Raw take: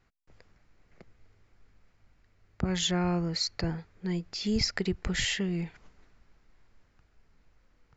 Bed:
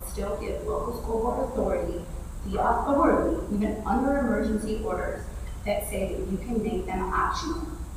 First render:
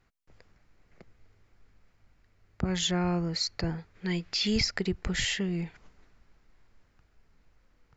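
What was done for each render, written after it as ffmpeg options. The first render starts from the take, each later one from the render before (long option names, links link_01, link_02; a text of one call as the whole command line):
ffmpeg -i in.wav -filter_complex "[0:a]asplit=3[link_01][link_02][link_03];[link_01]afade=type=out:start_time=3.94:duration=0.02[link_04];[link_02]equalizer=frequency=2700:width_type=o:width=2.4:gain=10,afade=type=in:start_time=3.94:duration=0.02,afade=type=out:start_time=4.6:duration=0.02[link_05];[link_03]afade=type=in:start_time=4.6:duration=0.02[link_06];[link_04][link_05][link_06]amix=inputs=3:normalize=0" out.wav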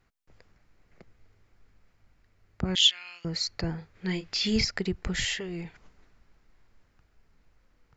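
ffmpeg -i in.wav -filter_complex "[0:a]asettb=1/sr,asplit=3[link_01][link_02][link_03];[link_01]atrim=end=2.754[link_04];[link_02]atrim=start=2.75:end=3.25,asetpts=PTS-STARTPTS,afade=type=in:duration=0.004:curve=qsin,afade=type=out:start_time=0.496:duration=0.004:curve=qsin,highpass=frequency=3000:width_type=q:width=5.3[link_05];[link_03]atrim=start=3.246[link_06];[link_04][link_05]acrossfade=duration=0.004:curve1=hsin:curve2=qsin[link_07];[link_07][link_06]acrossfade=duration=0.004:curve1=qsin:curve2=hsin,asettb=1/sr,asplit=3[link_08][link_09][link_10];[link_08]atrim=end=3.784[link_11];[link_09]atrim=start=3.78:end=4.65,asetpts=PTS-STARTPTS,afade=type=in:duration=0.004:curve=qsin,afade=type=out:start_time=0.866:duration=0.004:curve=qsin,asplit=2[link_12][link_13];[link_13]adelay=32,volume=-8.5dB[link_14];[link_12][link_14]amix=inputs=2:normalize=0,atrim=end_sample=38367[link_15];[link_10]atrim=start=4.646[link_16];[link_11][link_15]acrossfade=duration=0.004:curve1=hsin:curve2=qsin[link_17];[link_17][link_16]acrossfade=duration=0.004:curve1=qsin:curve2=hsin,asettb=1/sr,asplit=3[link_18][link_19][link_20];[link_18]atrim=end=5.234[link_21];[link_19]atrim=start=5.23:end=5.65,asetpts=PTS-STARTPTS,afade=type=in:duration=0.004:curve=qsin,afade=type=out:start_time=0.416:duration=0.004:curve=qsin,equalizer=frequency=200:width=3.7:gain=-13.5[link_22];[link_20]atrim=start=5.646[link_23];[link_21][link_22]acrossfade=duration=0.004:curve1=hsin:curve2=qsin[link_24];[link_24][link_23]acrossfade=duration=0.004:curve1=qsin:curve2=hsin" out.wav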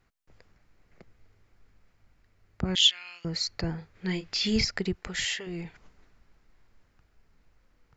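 ffmpeg -i in.wav -filter_complex "[0:a]asettb=1/sr,asplit=3[link_01][link_02][link_03];[link_01]atrim=end=4.934[link_04];[link_02]atrim=start=4.93:end=5.47,asetpts=PTS-STARTPTS,afade=type=in:duration=0.004:curve=qsin,afade=type=out:start_time=0.536:duration=0.004:curve=qsin,lowshelf=frequency=310:gain=-11.5[link_05];[link_03]atrim=start=5.466[link_06];[link_04][link_05]acrossfade=duration=0.004:curve1=hsin:curve2=qsin[link_07];[link_07][link_06]acrossfade=duration=0.004:curve1=qsin:curve2=hsin" out.wav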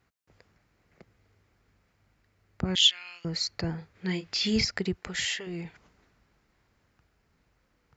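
ffmpeg -i in.wav -af "highpass=61" out.wav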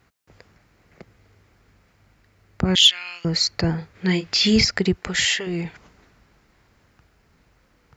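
ffmpeg -i in.wav -filter_complex "[0:a]asplit=2[link_01][link_02];[link_02]alimiter=limit=-19dB:level=0:latency=1,volume=-2.5dB[link_03];[link_01][link_03]amix=inputs=2:normalize=0,acontrast=29" out.wav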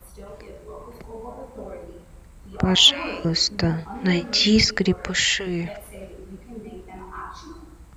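ffmpeg -i in.wav -i bed.wav -filter_complex "[1:a]volume=-10.5dB[link_01];[0:a][link_01]amix=inputs=2:normalize=0" out.wav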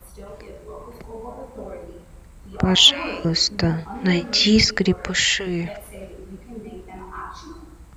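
ffmpeg -i in.wav -af "volume=1.5dB" out.wav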